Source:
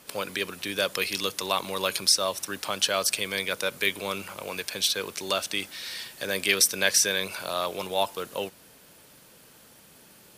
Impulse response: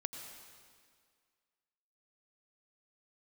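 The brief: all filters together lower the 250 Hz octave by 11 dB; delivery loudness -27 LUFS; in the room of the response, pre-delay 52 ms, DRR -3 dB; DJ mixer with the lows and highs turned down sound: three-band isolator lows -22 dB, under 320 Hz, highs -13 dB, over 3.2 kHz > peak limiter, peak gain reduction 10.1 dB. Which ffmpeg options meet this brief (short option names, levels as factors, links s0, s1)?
-filter_complex "[0:a]equalizer=f=250:t=o:g=-5.5,asplit=2[s0][s1];[1:a]atrim=start_sample=2205,adelay=52[s2];[s1][s2]afir=irnorm=-1:irlink=0,volume=1.5[s3];[s0][s3]amix=inputs=2:normalize=0,acrossover=split=320 3200:gain=0.0794 1 0.224[s4][s5][s6];[s4][s5][s6]amix=inputs=3:normalize=0,volume=1.19,alimiter=limit=0.168:level=0:latency=1"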